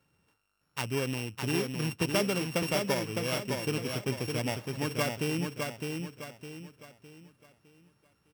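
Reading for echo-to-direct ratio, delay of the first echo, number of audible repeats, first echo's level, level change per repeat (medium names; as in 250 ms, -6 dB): -4.0 dB, 609 ms, 4, -4.5 dB, -8.5 dB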